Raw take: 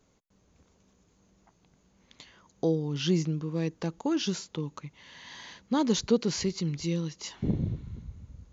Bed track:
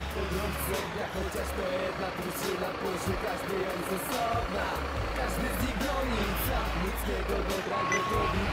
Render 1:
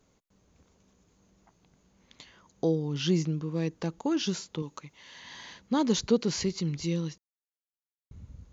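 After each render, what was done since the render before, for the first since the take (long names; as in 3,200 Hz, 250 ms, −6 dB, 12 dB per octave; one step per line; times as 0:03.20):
0:04.62–0:05.20: bass and treble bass −7 dB, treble +4 dB
0:07.18–0:08.11: silence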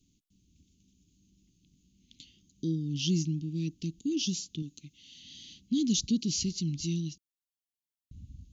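elliptic band-stop filter 300–2,900 Hz, stop band 40 dB
dynamic equaliser 6,000 Hz, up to +5 dB, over −53 dBFS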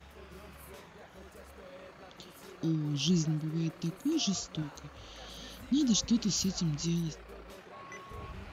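mix in bed track −18.5 dB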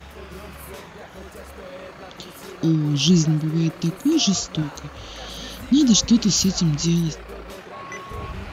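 level +12 dB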